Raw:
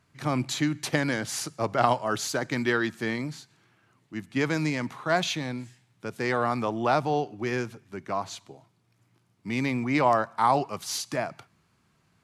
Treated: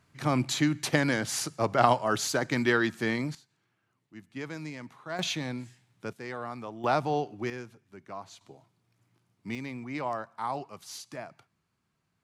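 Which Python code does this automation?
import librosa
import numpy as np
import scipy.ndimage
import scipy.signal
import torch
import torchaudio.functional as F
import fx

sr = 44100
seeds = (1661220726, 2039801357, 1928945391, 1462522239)

y = fx.gain(x, sr, db=fx.steps((0.0, 0.5), (3.35, -12.0), (5.19, -2.0), (6.13, -11.5), (6.84, -2.5), (7.5, -11.0), (8.41, -4.0), (9.55, -11.0)))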